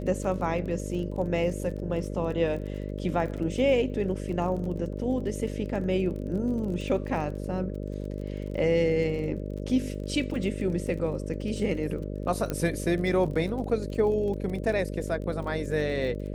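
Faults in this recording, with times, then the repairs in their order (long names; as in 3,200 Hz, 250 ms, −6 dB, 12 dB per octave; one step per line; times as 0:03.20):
mains buzz 50 Hz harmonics 12 −34 dBFS
surface crackle 27 per second −36 dBFS
0:12.50: click −16 dBFS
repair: click removal
hum removal 50 Hz, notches 12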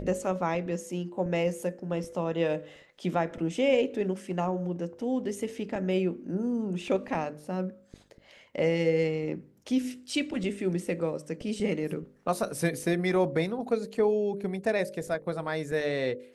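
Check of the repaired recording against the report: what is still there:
none of them is left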